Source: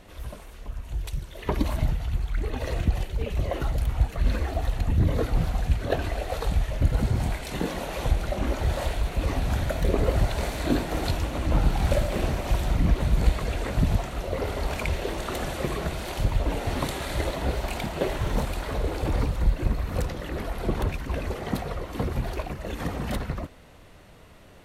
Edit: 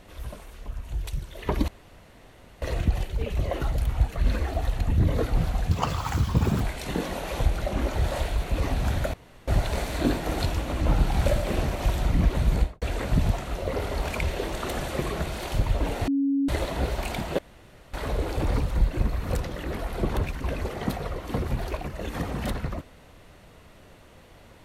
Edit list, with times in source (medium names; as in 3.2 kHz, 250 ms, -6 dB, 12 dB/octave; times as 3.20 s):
1.68–2.62 s: room tone
5.71–7.26 s: speed 173%
9.79–10.13 s: room tone
13.18–13.47 s: studio fade out
16.73–17.14 s: bleep 277 Hz -20.5 dBFS
18.04–18.59 s: room tone